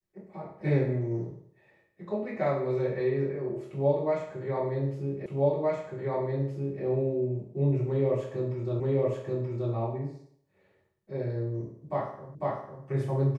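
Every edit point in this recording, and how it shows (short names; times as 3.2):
5.26 repeat of the last 1.57 s
8.8 repeat of the last 0.93 s
12.35 repeat of the last 0.5 s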